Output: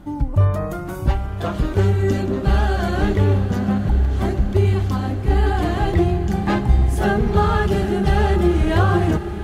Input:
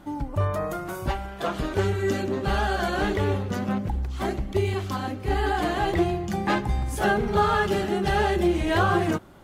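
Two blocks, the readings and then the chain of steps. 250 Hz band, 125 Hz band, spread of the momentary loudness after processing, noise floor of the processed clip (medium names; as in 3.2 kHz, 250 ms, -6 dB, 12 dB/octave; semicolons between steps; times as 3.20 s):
+6.0 dB, +10.5 dB, 5 LU, -27 dBFS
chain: bass shelf 240 Hz +12 dB; on a send: echo that smears into a reverb 904 ms, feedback 62%, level -12 dB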